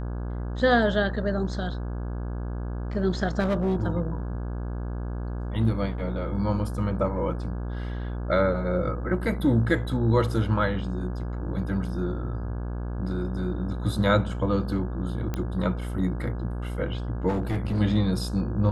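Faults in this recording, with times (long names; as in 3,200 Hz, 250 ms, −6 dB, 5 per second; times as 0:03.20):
mains buzz 60 Hz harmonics 28 −31 dBFS
0:03.39–0:03.80: clipping −20 dBFS
0:15.34: click −16 dBFS
0:17.28–0:17.80: clipping −22 dBFS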